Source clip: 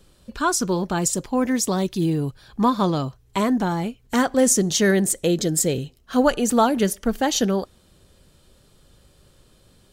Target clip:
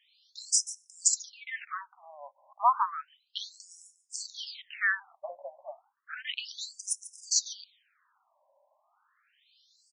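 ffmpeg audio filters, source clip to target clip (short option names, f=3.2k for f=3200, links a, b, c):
-filter_complex "[0:a]asettb=1/sr,asplit=3[a][b][c];[a]atrim=end=3.044[d];[b]atrim=start=3.04:end=4.56,asetpts=PTS-STARTPTS,afade=t=in:d=0.004:c=qsin,afade=t=out:st=1.516:d=0.004:c=qsin,equalizer=f=610:w=0.33:g=4[e];[c]atrim=start=4.556[f];[d][e]acrossfade=d=0.004:c1=hsin:c2=qsin[g];[g][f]acrossfade=d=0.004:c1=qsin:c2=hsin,acrossover=split=180|1200|2200[h][i][j][k];[i]volume=14.5dB,asoftclip=hard,volume=-14.5dB[l];[k]aecho=1:1:142:0.178[m];[h][l][j][m]amix=inputs=4:normalize=0,asettb=1/sr,asplit=3[n][o][p];[n]atrim=end=1.514[q];[o]atrim=start=1.51:end=2.11,asetpts=PTS-STARTPTS,afade=t=in:d=0.004:c=qsin,afade=t=out:st=0.596:d=0.004:c=qsin,adynamicsmooth=sensitivity=4.5:basefreq=1.6k[r];[p]atrim=start=2.106[s];[q][r]acrossfade=d=0.004:c1=hsin:c2=qsin[t];[t][s]acrossfade=d=0.004:c1=qsin:c2=hsin,afftfilt=real='re*between(b*sr/1024,740*pow(7400/740,0.5+0.5*sin(2*PI*0.32*pts/sr))/1.41,740*pow(7400/740,0.5+0.5*sin(2*PI*0.32*pts/sr))*1.41)':imag='im*between(b*sr/1024,740*pow(7400/740,0.5+0.5*sin(2*PI*0.32*pts/sr))/1.41,740*pow(7400/740,0.5+0.5*sin(2*PI*0.32*pts/sr))*1.41)':win_size=1024:overlap=0.75"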